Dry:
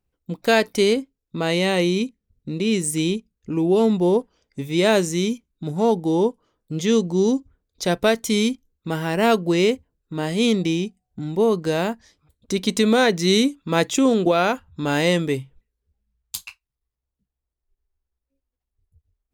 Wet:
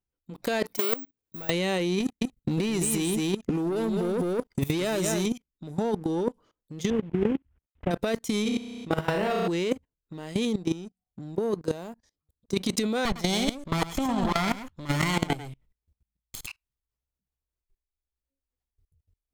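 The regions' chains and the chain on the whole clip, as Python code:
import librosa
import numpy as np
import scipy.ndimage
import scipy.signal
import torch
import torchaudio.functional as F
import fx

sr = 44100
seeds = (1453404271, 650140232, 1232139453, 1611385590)

y = fx.chain(x, sr, fx.highpass(hz=82.0, slope=12),
    fx.overload_stage(gain_db=25.0),
    fx.resample_bad(factor=2, down='filtered', up='zero_stuff'), at=(0.74, 1.5))
y = fx.chain(y, sr, fx.high_shelf(hz=10000.0, db=10.5),
    fx.leveller(passes=2),
    fx.echo_single(ms=211, db=-7.0), at=(2.0, 5.26))
y = fx.chain(y, sr, fx.cvsd(bps=16000),
    fx.level_steps(step_db=24),
    fx.peak_eq(hz=65.0, db=13.0, octaves=1.6), at=(6.9, 7.91))
y = fx.chain(y, sr, fx.high_shelf(hz=5300.0, db=-6.5),
    fx.room_flutter(wall_m=5.6, rt60_s=0.82), at=(8.42, 9.48))
y = fx.chain(y, sr, fx.peak_eq(hz=2300.0, db=-7.0, octaves=1.8),
    fx.upward_expand(threshold_db=-39.0, expansion=1.5), at=(10.45, 12.54))
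y = fx.chain(y, sr, fx.lower_of_two(delay_ms=0.92),
    fx.echo_single(ms=105, db=-7.0), at=(13.05, 16.47))
y = fx.level_steps(y, sr, step_db=23)
y = fx.leveller(y, sr, passes=1)
y = fx.over_compress(y, sr, threshold_db=-24.0, ratio=-0.5)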